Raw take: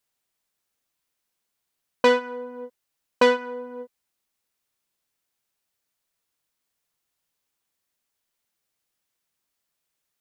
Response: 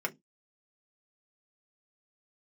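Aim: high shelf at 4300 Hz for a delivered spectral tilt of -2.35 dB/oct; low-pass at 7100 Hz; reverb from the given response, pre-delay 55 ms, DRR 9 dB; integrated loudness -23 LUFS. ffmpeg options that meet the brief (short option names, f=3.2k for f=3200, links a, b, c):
-filter_complex "[0:a]lowpass=7.1k,highshelf=f=4.3k:g=7,asplit=2[a][b];[1:a]atrim=start_sample=2205,adelay=55[c];[b][c]afir=irnorm=-1:irlink=0,volume=-14.5dB[d];[a][d]amix=inputs=2:normalize=0,volume=-2dB"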